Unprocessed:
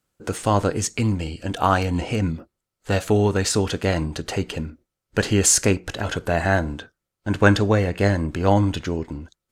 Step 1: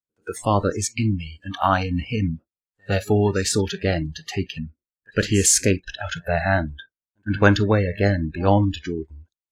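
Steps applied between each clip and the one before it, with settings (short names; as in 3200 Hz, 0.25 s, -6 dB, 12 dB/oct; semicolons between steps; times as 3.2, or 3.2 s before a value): pre-echo 0.108 s -17.5 dB; spectral noise reduction 27 dB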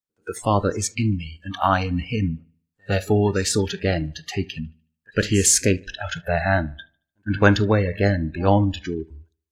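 dark delay 74 ms, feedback 37%, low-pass 3700 Hz, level -23.5 dB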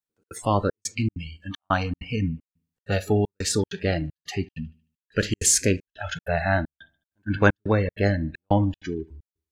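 step gate "xxx.xxxxx.." 194 bpm -60 dB; gain -2.5 dB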